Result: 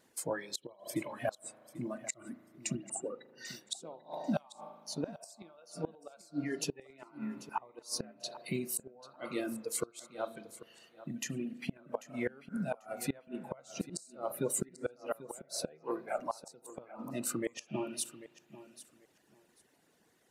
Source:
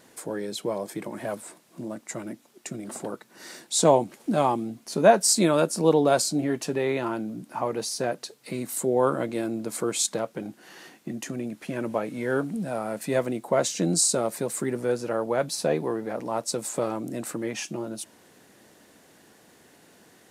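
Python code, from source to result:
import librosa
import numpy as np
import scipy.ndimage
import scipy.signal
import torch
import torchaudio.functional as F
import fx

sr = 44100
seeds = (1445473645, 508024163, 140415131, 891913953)

y = fx.spec_expand(x, sr, power=1.8, at=(2.75, 3.46))
y = fx.dereverb_blind(y, sr, rt60_s=1.3)
y = fx.rider(y, sr, range_db=4, speed_s=0.5)
y = fx.highpass(y, sr, hz=1300.0, slope=6, at=(4.37, 4.96), fade=0.02)
y = fx.rev_spring(y, sr, rt60_s=2.3, pass_ms=(37,), chirp_ms=45, drr_db=8.0)
y = fx.noise_reduce_blind(y, sr, reduce_db=12)
y = fx.gate_flip(y, sr, shuts_db=-18.0, range_db=-26)
y = fx.hpss(y, sr, part='harmonic', gain_db=-4)
y = fx.echo_feedback(y, sr, ms=791, feedback_pct=19, wet_db=-16.0)
y = F.gain(torch.from_numpy(y), -3.0).numpy()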